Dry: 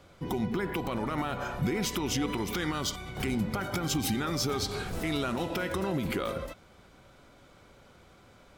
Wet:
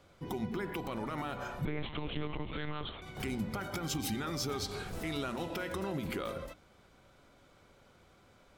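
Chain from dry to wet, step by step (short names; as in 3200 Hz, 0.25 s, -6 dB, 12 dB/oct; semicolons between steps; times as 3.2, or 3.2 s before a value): notches 60/120/180/240/300 Hz; 1.65–3.02 monotone LPC vocoder at 8 kHz 150 Hz; gain -5.5 dB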